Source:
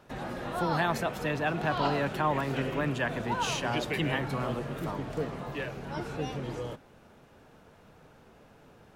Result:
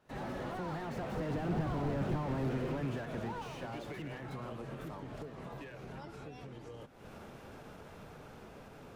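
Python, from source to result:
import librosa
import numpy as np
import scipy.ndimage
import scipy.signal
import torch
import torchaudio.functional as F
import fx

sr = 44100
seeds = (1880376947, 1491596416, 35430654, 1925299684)

y = fx.recorder_agc(x, sr, target_db=-17.5, rise_db_per_s=69.0, max_gain_db=30)
y = fx.doppler_pass(y, sr, speed_mps=12, closest_m=4.2, pass_at_s=1.86)
y = fx.slew_limit(y, sr, full_power_hz=9.2)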